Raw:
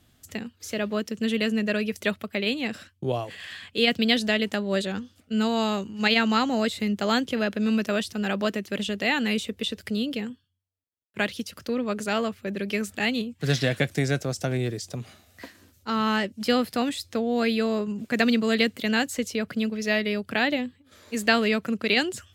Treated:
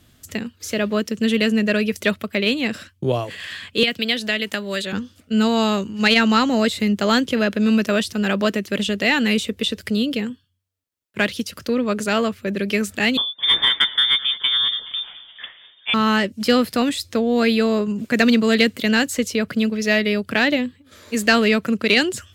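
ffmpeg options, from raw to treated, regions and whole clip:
-filter_complex "[0:a]asettb=1/sr,asplit=3[a][b][c];[a]atrim=end=3.834[d];[b]atrim=start=3.83:end=4.93,asetpts=PTS-STARTPTS,afade=t=in:d=0.004:c=qsin,afade=t=out:st=1.096:d=0.004:c=qsin,acrossover=split=380|1300|4000[e][f][g][h];[e]acompressor=threshold=-40dB:ratio=3[i];[f]acompressor=threshold=-37dB:ratio=3[j];[g]acompressor=threshold=-27dB:ratio=3[k];[h]acompressor=threshold=-48dB:ratio=3[l];[i][j][k][l]amix=inputs=4:normalize=0,highshelf=f=8.7k:g=11[m];[c]atrim=start=4.926[n];[d][m]acrossfade=d=0.004:c1=hsin:c2=qsin[o];[o][n]acrossfade=d=0.004:c1=qsin:c2=hsin,asettb=1/sr,asplit=3[p][q][r];[p]atrim=end=13.174[s];[q]atrim=start=13.17:end=15.94,asetpts=PTS-STARTPTS,afade=t=in:d=0.004:c=qsin,afade=t=out:st=2.766:d=0.004:c=qsin,asplit=6[t][u][v][w][x][y];[u]adelay=211,afreqshift=58,volume=-18dB[z];[v]adelay=422,afreqshift=116,volume=-22.9dB[aa];[w]adelay=633,afreqshift=174,volume=-27.8dB[ab];[x]adelay=844,afreqshift=232,volume=-32.6dB[ac];[y]adelay=1055,afreqshift=290,volume=-37.5dB[ad];[t][z][aa][ab][ac][ad]amix=inputs=6:normalize=0,atrim=end_sample=122157,lowpass=f=3.1k:t=q:w=0.5098,lowpass=f=3.1k:t=q:w=0.6013,lowpass=f=3.1k:t=q:w=0.9,lowpass=f=3.1k:t=q:w=2.563,afreqshift=-3700[ae];[r]atrim=start=15.936[af];[s][ae]acrossfade=d=0.004:c1=hsin:c2=qsin[ag];[ag][af]acrossfade=d=0.004:c1=qsin:c2=hsin,equalizer=f=770:w=5.9:g=-5.5,acontrast=78"

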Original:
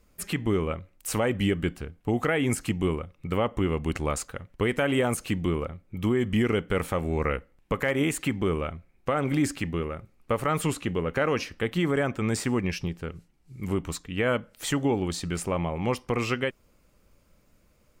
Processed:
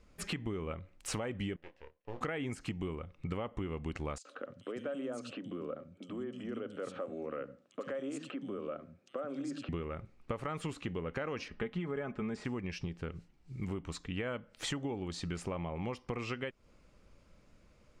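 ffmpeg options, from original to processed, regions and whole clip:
-filter_complex "[0:a]asettb=1/sr,asplit=3[a][b][c];[a]atrim=end=1.564[d];[b]atrim=start=1.56:end=2.21,asetpts=PTS-STARTPTS,afade=t=in:d=0.004:c=qsin,afade=t=out:st=0.646:d=0.004:c=qsin,asplit=3[e][f][g];[e]bandpass=f=530:t=q:w=8,volume=0dB[h];[f]bandpass=f=1.84k:t=q:w=8,volume=-6dB[i];[g]bandpass=f=2.48k:t=q:w=8,volume=-9dB[j];[h][i][j]amix=inputs=3:normalize=0,aeval=exprs='max(val(0),0)':c=same,asplit=2[k][l];[l]adelay=26,volume=-9dB[m];[k][m]amix=inputs=2:normalize=0,atrim=end_sample=28665[n];[c]atrim=start=2.206[o];[d][n]acrossfade=d=0.004:c1=hsin:c2=qsin[p];[p][o]acrossfade=d=0.004:c1=qsin:c2=hsin,asettb=1/sr,asplit=3[q][r][s];[q]atrim=end=4.184[t];[r]atrim=start=4.18:end=9.69,asetpts=PTS-STARTPTS,afade=t=in:d=0.004:c=qsin,afade=t=out:st=5.506:d=0.004:c=qsin,acompressor=threshold=-37dB:ratio=4:attack=3.2:release=140:knee=1:detection=peak,highpass=f=150:w=0.5412,highpass=f=150:w=1.3066,equalizer=f=160:t=q:w=4:g=-7,equalizer=f=270:t=q:w=4:g=7,equalizer=f=560:t=q:w=4:g=10,equalizer=f=900:t=q:w=4:g=-9,equalizer=f=1.3k:t=q:w=4:g=4,equalizer=f=2.1k:t=q:w=4:g=-10,lowpass=f=9.5k:w=0.5412,lowpass=f=9.5k:w=1.3066,acrossover=split=220|3100[u][v][w];[v]adelay=70[x];[u]adelay=160[y];[y][x][w]amix=inputs=3:normalize=0,atrim=end_sample=242991[z];[s]atrim=start=9.686[aa];[t][z]acrossfade=d=0.004:c1=hsin:c2=qsin[ab];[ab][aa]acrossfade=d=0.004:c1=qsin:c2=hsin,asettb=1/sr,asplit=3[ac][ad][ae];[ac]atrim=end=11.484[af];[ad]atrim=start=11.48:end=12.45,asetpts=PTS-STARTPTS,afade=t=in:d=0.004:c=qsin,afade=t=out:st=0.966:d=0.004:c=qsin,lowpass=f=2k:p=1,aecho=1:1:4.8:0.56,atrim=end_sample=42777[ag];[ae]atrim=start=12.446[ah];[af][ag]acrossfade=d=0.004:c1=hsin:c2=qsin[ai];[ai][ah]acrossfade=d=0.004:c1=qsin:c2=hsin,lowpass=6k,acompressor=threshold=-35dB:ratio=6"

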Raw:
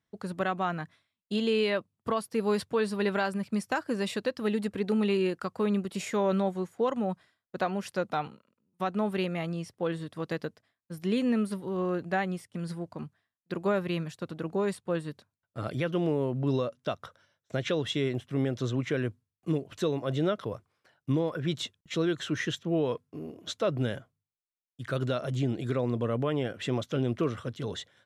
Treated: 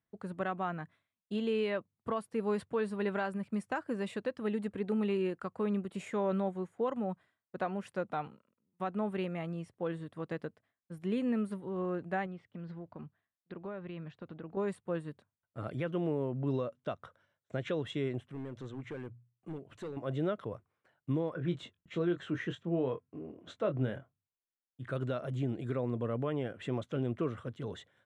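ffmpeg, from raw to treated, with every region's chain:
-filter_complex "[0:a]asettb=1/sr,asplit=3[a][b][c];[a]atrim=end=12.264[d];[b]atrim=start=12.26:end=14.57,asetpts=PTS-STARTPTS,afade=t=in:d=0.004:c=qsin,afade=t=out:st=2.306:d=0.004:c=qsin,lowpass=f=4.5k:w=0.5412,lowpass=f=4.5k:w=1.3066,acompressor=threshold=-36dB:ratio=3:attack=3.2:release=140:knee=1:detection=peak[e];[c]atrim=start=14.566[f];[d][e]acrossfade=d=0.004:c1=hsin:c2=qsin[g];[g][f]acrossfade=d=0.004:c1=qsin:c2=hsin,asettb=1/sr,asplit=3[h][i][j];[h]atrim=end=18.284[k];[i]atrim=start=18.28:end=19.97,asetpts=PTS-STARTPTS,afade=t=in:d=0.004:c=qsin,afade=t=out:st=1.686:d=0.004:c=qsin,asoftclip=type=hard:threshold=-25.5dB,bandreject=f=60:t=h:w=6,bandreject=f=120:t=h:w=6,bandreject=f=180:t=h:w=6,acompressor=threshold=-44dB:ratio=1.5:attack=3.2:release=140:knee=1:detection=peak[l];[j]atrim=start=19.966[m];[k][l]acrossfade=d=0.004:c1=hsin:c2=qsin[n];[n][m]acrossfade=d=0.004:c1=qsin:c2=hsin,asettb=1/sr,asplit=3[o][p][q];[o]atrim=end=21.334[r];[p]atrim=start=21.33:end=24.89,asetpts=PTS-STARTPTS,afade=t=in:d=0.004:c=qsin,afade=t=out:st=3.556:d=0.004:c=qsin,aemphasis=mode=reproduction:type=cd,asplit=2[s][t];[t]adelay=23,volume=-8dB[u];[s][u]amix=inputs=2:normalize=0,atrim=end_sample=156996[v];[q]atrim=start=24.886[w];[r][v]acrossfade=d=0.004:c1=hsin:c2=qsin[x];[x][w]acrossfade=d=0.004:c1=qsin:c2=hsin,lowpass=f=9.4k:w=0.5412,lowpass=f=9.4k:w=1.3066,equalizer=f=5.2k:w=1.1:g=-13.5,volume=-5dB"

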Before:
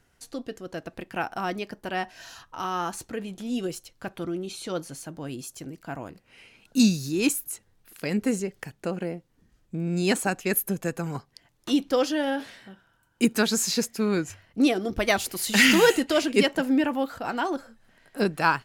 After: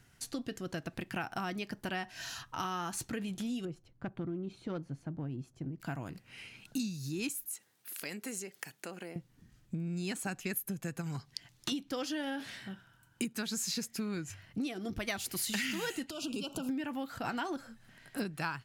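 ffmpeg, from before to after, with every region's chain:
-filter_complex "[0:a]asettb=1/sr,asplit=3[a][b][c];[a]atrim=end=3.654[d];[b]atrim=start=3.65:end=5.8,asetpts=PTS-STARTPTS,afade=t=in:d=0.004:c=qsin,afade=t=out:st=2.146:d=0.004:c=qsin,aemphasis=mode=production:type=75fm,adynamicsmooth=sensitivity=0.5:basefreq=790[e];[c]atrim=start=5.796[f];[d][e]acrossfade=d=0.004:c1=hsin:c2=qsin[g];[g][f]acrossfade=d=0.004:c1=qsin:c2=hsin,asettb=1/sr,asplit=3[h][i][j];[h]atrim=end=7.464[k];[i]atrim=start=7.46:end=9.16,asetpts=PTS-STARTPTS,afade=t=in:d=0.004:c=qsin,afade=t=out:st=1.696:d=0.004:c=qsin,highshelf=f=8.5k:g=8,acompressor=threshold=-42dB:ratio=2:attack=3.2:release=140:knee=1:detection=peak,highpass=370[l];[j]atrim=start=9.156[m];[k][l]acrossfade=d=0.004:c1=hsin:c2=qsin[n];[n][m]acrossfade=d=0.004:c1=qsin:c2=hsin,asettb=1/sr,asplit=3[o][p][q];[o]atrim=end=11.014[r];[p]atrim=start=11.01:end=11.72,asetpts=PTS-STARTPTS,afade=t=in:d=0.004:c=qsin,afade=t=out:st=0.706:d=0.004:c=qsin,acompressor=threshold=-33dB:ratio=2:attack=3.2:release=140:knee=1:detection=peak,equalizer=f=4.8k:w=0.63:g=6.5[s];[q]atrim=start=11.716[t];[r][s]acrossfade=d=0.004:c1=hsin:c2=qsin[u];[u][t]acrossfade=d=0.004:c1=qsin:c2=hsin,asettb=1/sr,asplit=3[v][w][x];[v]atrim=end=16.104[y];[w]atrim=start=16.1:end=16.69,asetpts=PTS-STARTPTS,afade=t=in:d=0.004:c=qsin,afade=t=out:st=0.586:d=0.004:c=qsin,asuperstop=centerf=1900:order=12:qfactor=1.9,acompressor=threshold=-32dB:ratio=6:attack=3.2:release=140:knee=1:detection=peak[z];[x]atrim=start=16.686[aa];[y][z]acrossfade=d=0.004:c1=hsin:c2=qsin[ab];[ab][aa]acrossfade=d=0.004:c1=qsin:c2=hsin,equalizer=f=125:t=o:w=1:g=9,equalizer=f=500:t=o:w=1:g=-7,equalizer=f=1k:t=o:w=1:g=-3,acompressor=threshold=-35dB:ratio=10,lowshelf=f=170:g=-6,volume=3dB"

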